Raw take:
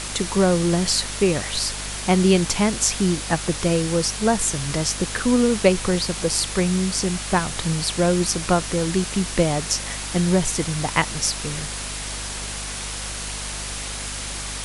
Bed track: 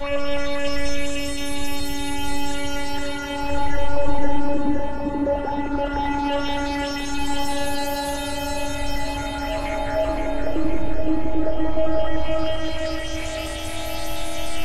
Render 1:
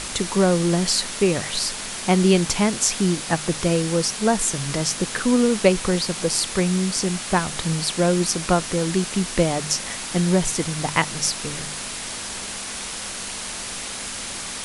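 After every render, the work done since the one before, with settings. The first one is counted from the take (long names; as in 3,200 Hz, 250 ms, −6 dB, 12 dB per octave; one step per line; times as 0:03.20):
hum removal 50 Hz, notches 3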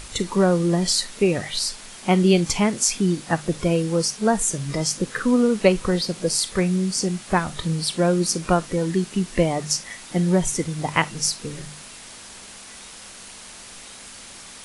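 noise reduction from a noise print 10 dB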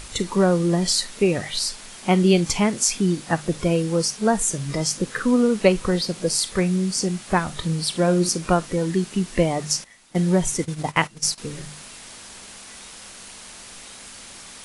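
0:07.89–0:08.29: flutter between parallel walls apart 10.6 metres, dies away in 0.28 s
0:09.84–0:11.38: noise gate −30 dBFS, range −14 dB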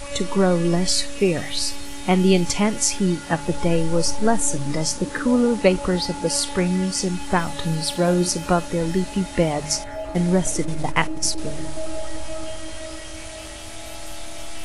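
mix in bed track −9 dB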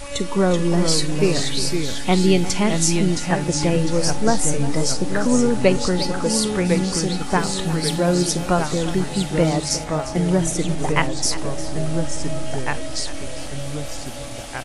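single-tap delay 353 ms −15 dB
delay with pitch and tempo change per echo 361 ms, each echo −2 semitones, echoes 2, each echo −6 dB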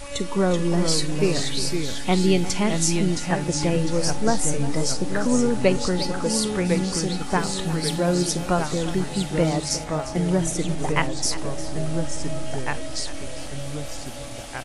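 level −3 dB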